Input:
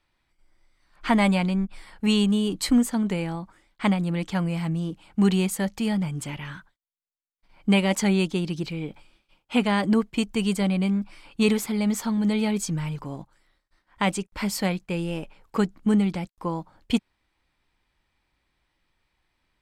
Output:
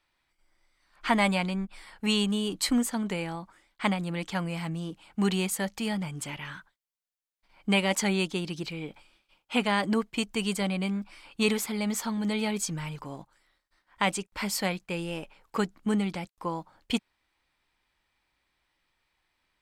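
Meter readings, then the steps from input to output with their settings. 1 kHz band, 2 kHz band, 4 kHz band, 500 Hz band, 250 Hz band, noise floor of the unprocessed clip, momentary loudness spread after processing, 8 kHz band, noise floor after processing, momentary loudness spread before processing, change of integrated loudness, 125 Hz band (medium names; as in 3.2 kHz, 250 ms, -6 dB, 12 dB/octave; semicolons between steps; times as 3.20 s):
-1.5 dB, -0.5 dB, 0.0 dB, -3.5 dB, -6.5 dB, -76 dBFS, 12 LU, 0.0 dB, -80 dBFS, 12 LU, -4.5 dB, -7.0 dB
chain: bass shelf 390 Hz -8.5 dB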